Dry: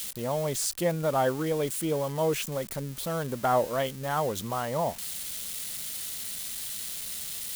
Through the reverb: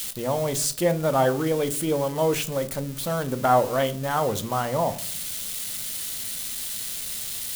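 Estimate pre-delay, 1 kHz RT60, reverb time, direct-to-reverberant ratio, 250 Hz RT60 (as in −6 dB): 3 ms, 0.45 s, 0.55 s, 9.5 dB, 0.85 s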